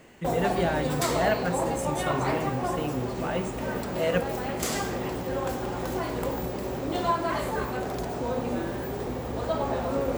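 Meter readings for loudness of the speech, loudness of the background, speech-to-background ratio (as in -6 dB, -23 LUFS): -31.0 LUFS, -30.0 LUFS, -1.0 dB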